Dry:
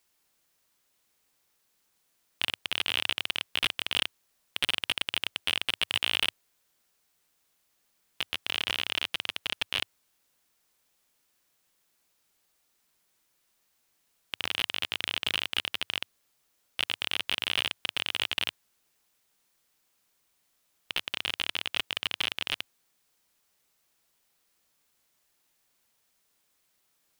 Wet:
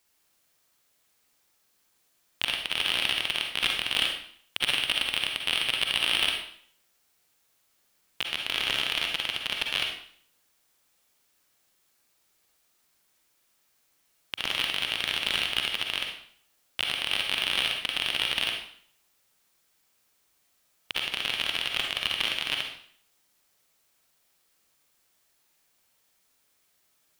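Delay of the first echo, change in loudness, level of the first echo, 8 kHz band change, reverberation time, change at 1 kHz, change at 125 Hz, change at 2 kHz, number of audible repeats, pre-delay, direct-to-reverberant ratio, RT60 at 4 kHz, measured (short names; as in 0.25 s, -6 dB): none, +3.0 dB, none, +3.5 dB, 0.55 s, +3.0 dB, +2.5 dB, +3.5 dB, none, 36 ms, 1.5 dB, 0.55 s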